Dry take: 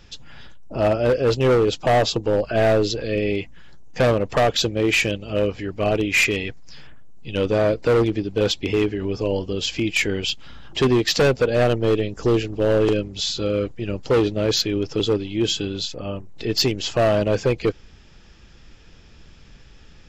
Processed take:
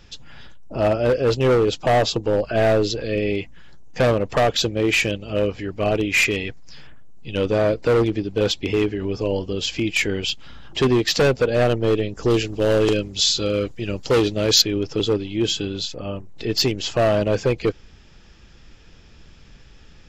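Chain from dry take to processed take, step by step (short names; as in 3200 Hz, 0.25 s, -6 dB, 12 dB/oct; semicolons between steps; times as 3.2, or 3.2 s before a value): 12.3–14.62 high shelf 3200 Hz +10 dB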